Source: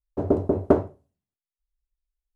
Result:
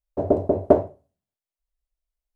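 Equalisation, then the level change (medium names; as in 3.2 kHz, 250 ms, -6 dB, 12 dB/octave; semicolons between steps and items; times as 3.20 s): dynamic bell 1.3 kHz, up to -6 dB, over -50 dBFS, Q 4.5; peaking EQ 630 Hz +9.5 dB 0.67 oct; -1.5 dB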